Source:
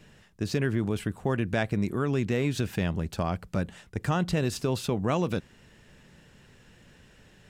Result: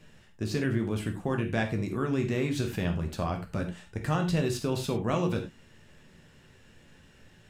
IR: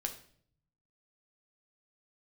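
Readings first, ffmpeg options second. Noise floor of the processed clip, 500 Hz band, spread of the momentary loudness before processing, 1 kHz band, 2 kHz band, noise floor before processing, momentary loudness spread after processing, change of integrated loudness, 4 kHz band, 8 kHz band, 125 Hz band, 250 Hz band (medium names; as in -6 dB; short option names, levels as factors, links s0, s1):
-57 dBFS, -1.5 dB, 6 LU, -1.5 dB, -1.5 dB, -57 dBFS, 7 LU, -1.0 dB, -1.5 dB, -1.5 dB, -1.5 dB, -1.0 dB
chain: -filter_complex "[1:a]atrim=start_sample=2205,atrim=end_sample=3528,asetrate=32193,aresample=44100[s0];[0:a][s0]afir=irnorm=-1:irlink=0,volume=0.668"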